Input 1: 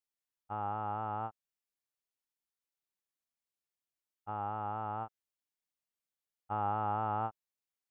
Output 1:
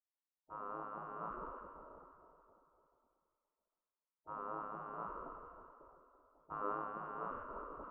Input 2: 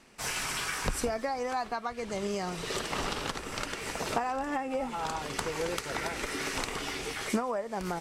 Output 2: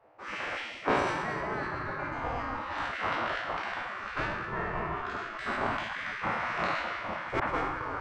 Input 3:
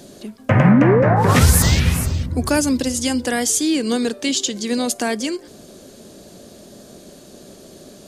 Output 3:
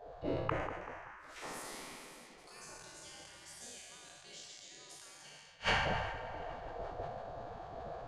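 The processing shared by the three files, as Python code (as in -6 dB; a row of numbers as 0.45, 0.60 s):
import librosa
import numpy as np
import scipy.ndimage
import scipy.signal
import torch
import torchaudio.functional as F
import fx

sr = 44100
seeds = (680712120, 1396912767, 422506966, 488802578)

p1 = fx.spec_trails(x, sr, decay_s=2.45)
p2 = fx.dynamic_eq(p1, sr, hz=130.0, q=0.8, threshold_db=-22.0, ratio=4.0, max_db=-4)
p3 = p2 + fx.echo_feedback(p2, sr, ms=543, feedback_pct=28, wet_db=-15.0, dry=0)
p4 = fx.env_lowpass(p3, sr, base_hz=520.0, full_db=-13.0)
p5 = scipy.signal.sosfilt(scipy.signal.butter(2, 8600.0, 'lowpass', fs=sr, output='sos'), p4)
p6 = fx.gate_flip(p5, sr, shuts_db=-14.0, range_db=-41)
p7 = fx.low_shelf(p6, sr, hz=370.0, db=6.0)
p8 = fx.echo_wet_lowpass(p7, sr, ms=192, feedback_pct=55, hz=2000.0, wet_db=-13.5)
p9 = fx.rider(p8, sr, range_db=3, speed_s=0.5)
p10 = fx.spec_gate(p9, sr, threshold_db=-15, keep='weak')
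p11 = fx.sustainer(p10, sr, db_per_s=41.0)
y = p11 * 10.0 ** (5.5 / 20.0)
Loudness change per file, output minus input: -8.5, +0.5, -24.5 LU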